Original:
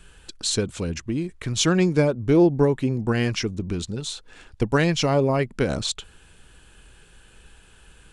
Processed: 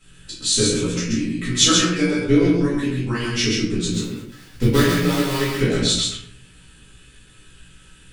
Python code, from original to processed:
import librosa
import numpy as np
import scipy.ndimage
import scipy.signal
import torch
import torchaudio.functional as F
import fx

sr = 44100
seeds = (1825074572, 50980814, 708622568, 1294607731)

y = fx.dead_time(x, sr, dead_ms=0.19, at=(3.88, 5.58), fade=0.02)
y = fx.peak_eq(y, sr, hz=740.0, db=-13.0, octaves=1.3)
y = fx.hpss(y, sr, part='harmonic', gain_db=-15)
y = fx.low_shelf(y, sr, hz=82.0, db=-11.5)
y = fx.doubler(y, sr, ms=17.0, db=-3.5)
y = y + 10.0 ** (-3.5 / 20.0) * np.pad(y, (int(132 * sr / 1000.0), 0))[:len(y)]
y = fx.room_shoebox(y, sr, seeds[0], volume_m3=73.0, walls='mixed', distance_m=2.2)
y = y * 10.0 ** (-1.5 / 20.0)